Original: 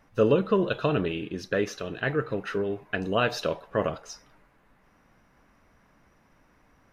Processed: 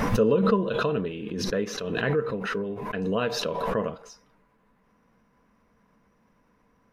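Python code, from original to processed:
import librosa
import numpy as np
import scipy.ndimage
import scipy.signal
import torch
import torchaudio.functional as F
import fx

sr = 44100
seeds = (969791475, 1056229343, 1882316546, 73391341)

y = fx.small_body(x, sr, hz=(210.0, 460.0, 1000.0), ring_ms=45, db=10)
y = fx.pre_swell(y, sr, db_per_s=29.0)
y = F.gain(torch.from_numpy(y), -7.0).numpy()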